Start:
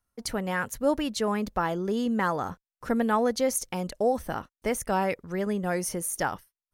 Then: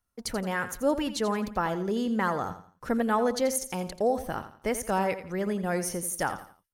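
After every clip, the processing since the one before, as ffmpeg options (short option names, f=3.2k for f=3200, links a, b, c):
-af "aecho=1:1:85|170|255:0.251|0.0854|0.029,volume=-1dB"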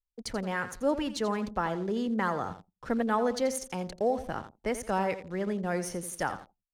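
-filter_complex "[0:a]anlmdn=0.01,acrossover=split=250|910[a][b][c];[c]aeval=exprs='val(0)*gte(abs(val(0)),0.00355)':c=same[d];[a][b][d]amix=inputs=3:normalize=0,adynamicsmooth=sensitivity=6:basefreq=7.2k,volume=-2dB"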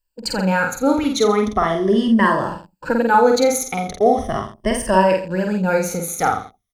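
-filter_complex "[0:a]afftfilt=real='re*pow(10,15/40*sin(2*PI*(1.3*log(max(b,1)*sr/1024/100)/log(2)-(-0.39)*(pts-256)/sr)))':imag='im*pow(10,15/40*sin(2*PI*(1.3*log(max(b,1)*sr/1024/100)/log(2)-(-0.39)*(pts-256)/sr)))':win_size=1024:overlap=0.75,asplit=2[a][b];[b]adelay=48,volume=-3.5dB[c];[a][c]amix=inputs=2:normalize=0,volume=9dB"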